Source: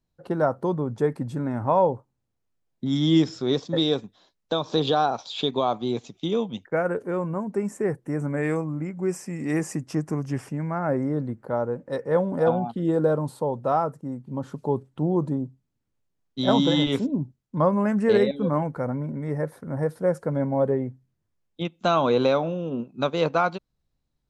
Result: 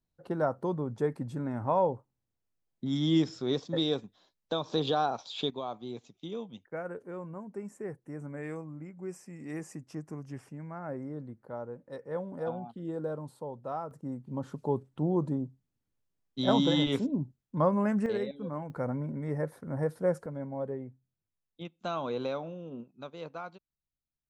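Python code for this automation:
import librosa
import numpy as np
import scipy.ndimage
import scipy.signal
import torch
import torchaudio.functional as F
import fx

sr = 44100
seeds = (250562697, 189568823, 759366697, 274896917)

y = fx.gain(x, sr, db=fx.steps((0.0, -6.5), (5.5, -13.5), (13.91, -5.0), (18.06, -13.0), (18.7, -5.0), (20.26, -13.0), (22.92, -19.0)))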